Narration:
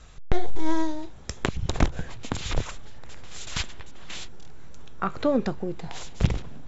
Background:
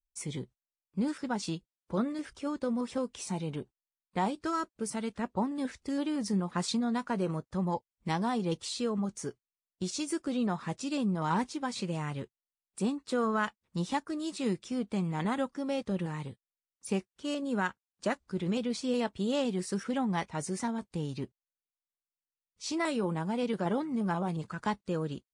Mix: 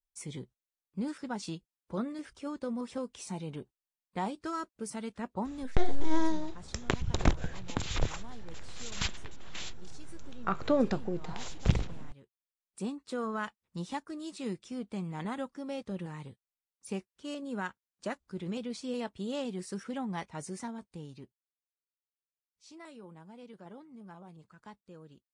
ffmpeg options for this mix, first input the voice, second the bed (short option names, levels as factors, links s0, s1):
-filter_complex "[0:a]adelay=5450,volume=0.668[s0];[1:a]volume=2.99,afade=t=out:st=5.38:d=0.81:silence=0.177828,afade=t=in:st=12.22:d=0.5:silence=0.211349,afade=t=out:st=20.5:d=1.04:silence=0.223872[s1];[s0][s1]amix=inputs=2:normalize=0"